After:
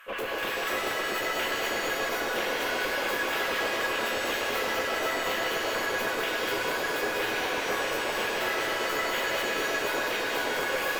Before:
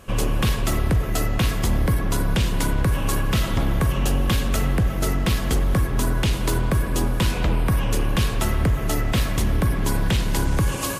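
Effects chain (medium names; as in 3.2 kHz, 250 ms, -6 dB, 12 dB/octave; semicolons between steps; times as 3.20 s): steep high-pass 200 Hz 48 dB/octave; LFO high-pass square 7.9 Hz 480–1600 Hz; valve stage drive 29 dB, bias 0.2; high-order bell 6.9 kHz -12.5 dB; two-band feedback delay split 1.1 kHz, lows 671 ms, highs 198 ms, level -4 dB; pitch-shifted reverb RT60 1.6 s, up +7 st, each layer -2 dB, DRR 4 dB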